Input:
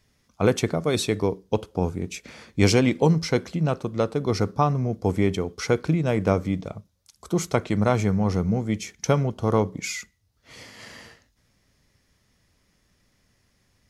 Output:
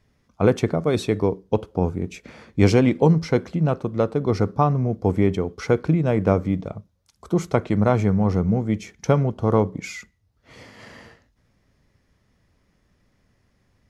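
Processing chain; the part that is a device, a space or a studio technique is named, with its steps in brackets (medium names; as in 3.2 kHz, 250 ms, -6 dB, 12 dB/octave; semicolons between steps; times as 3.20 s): through cloth (treble shelf 2.7 kHz -12 dB); trim +3 dB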